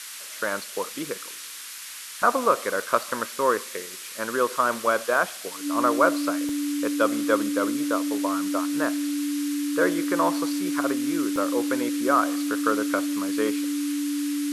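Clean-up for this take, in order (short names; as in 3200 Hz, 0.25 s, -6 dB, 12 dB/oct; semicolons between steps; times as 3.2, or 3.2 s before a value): clip repair -7 dBFS; notch 290 Hz, Q 30; interpolate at 1.78/2.82/5.3/6.49/11.36, 2.2 ms; noise print and reduce 30 dB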